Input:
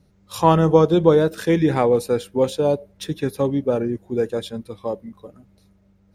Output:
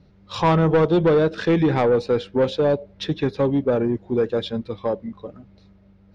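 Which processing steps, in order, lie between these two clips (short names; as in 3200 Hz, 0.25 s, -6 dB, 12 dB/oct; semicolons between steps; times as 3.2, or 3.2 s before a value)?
LPF 4700 Hz 24 dB/oct; in parallel at -2.5 dB: compressor, threshold -25 dBFS, peak gain reduction 15.5 dB; on the sum: soft clip -11.5 dBFS, distortion -13 dB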